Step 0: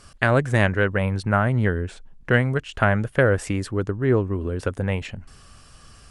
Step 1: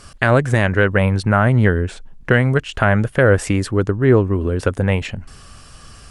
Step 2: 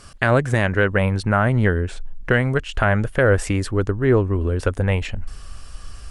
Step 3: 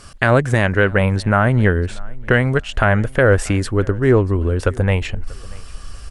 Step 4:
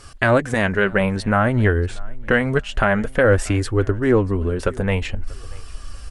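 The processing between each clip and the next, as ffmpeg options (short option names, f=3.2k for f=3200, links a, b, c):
-af "alimiter=limit=-9dB:level=0:latency=1:release=116,volume=7dB"
-af "asubboost=boost=5.5:cutoff=59,volume=-2.5dB"
-af "aecho=1:1:637|1274:0.0631|0.0145,volume=3dB"
-af "flanger=delay=2.3:depth=3:regen=-42:speed=0.54:shape=triangular,volume=2dB"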